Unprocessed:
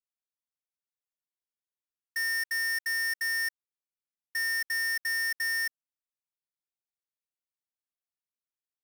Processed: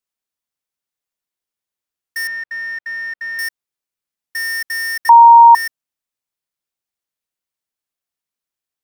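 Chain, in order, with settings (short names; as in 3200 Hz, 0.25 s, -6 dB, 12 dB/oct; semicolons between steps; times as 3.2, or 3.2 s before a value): 2.27–3.39 air absorption 310 m; 5.09–5.55 bleep 933 Hz -9.5 dBFS; gain +8 dB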